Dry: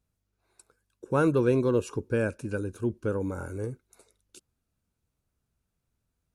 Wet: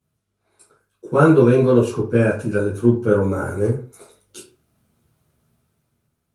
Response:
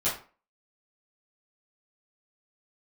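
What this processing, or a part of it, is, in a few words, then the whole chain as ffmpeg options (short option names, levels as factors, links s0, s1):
far-field microphone of a smart speaker: -filter_complex "[1:a]atrim=start_sample=2205[s0];[0:a][s0]afir=irnorm=-1:irlink=0,highpass=f=82:w=0.5412,highpass=f=82:w=1.3066,dynaudnorm=f=210:g=9:m=2.99" -ar 48000 -c:a libopus -b:a 32k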